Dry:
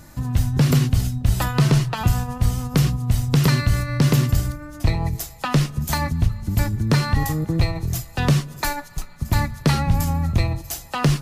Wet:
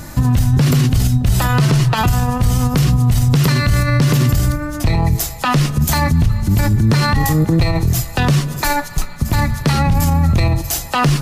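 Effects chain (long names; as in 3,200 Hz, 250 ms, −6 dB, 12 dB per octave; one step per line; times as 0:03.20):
boost into a limiter +18.5 dB
level −5.5 dB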